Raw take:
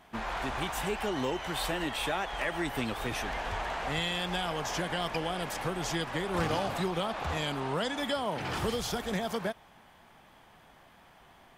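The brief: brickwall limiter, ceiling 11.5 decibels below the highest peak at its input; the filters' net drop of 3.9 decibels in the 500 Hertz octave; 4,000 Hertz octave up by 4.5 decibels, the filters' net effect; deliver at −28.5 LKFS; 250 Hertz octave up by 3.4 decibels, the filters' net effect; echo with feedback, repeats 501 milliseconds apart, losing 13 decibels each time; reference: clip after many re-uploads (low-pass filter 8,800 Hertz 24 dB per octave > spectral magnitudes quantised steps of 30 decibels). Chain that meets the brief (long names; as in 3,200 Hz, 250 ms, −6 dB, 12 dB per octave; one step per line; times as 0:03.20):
parametric band 250 Hz +7 dB
parametric band 500 Hz −7.5 dB
parametric band 4,000 Hz +6 dB
brickwall limiter −28 dBFS
low-pass filter 8,800 Hz 24 dB per octave
repeating echo 501 ms, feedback 22%, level −13 dB
spectral magnitudes quantised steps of 30 dB
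level +8.5 dB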